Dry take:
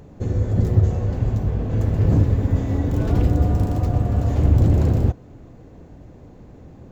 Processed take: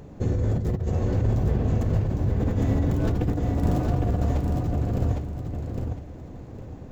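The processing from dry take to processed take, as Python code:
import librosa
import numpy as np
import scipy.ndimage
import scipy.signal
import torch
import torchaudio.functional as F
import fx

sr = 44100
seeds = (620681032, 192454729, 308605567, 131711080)

p1 = fx.hum_notches(x, sr, base_hz=50, count=2)
p2 = fx.over_compress(p1, sr, threshold_db=-22.0, ratio=-1.0)
p3 = p2 + fx.echo_feedback(p2, sr, ms=808, feedback_pct=25, wet_db=-4.0, dry=0)
y = p3 * librosa.db_to_amplitude(-2.5)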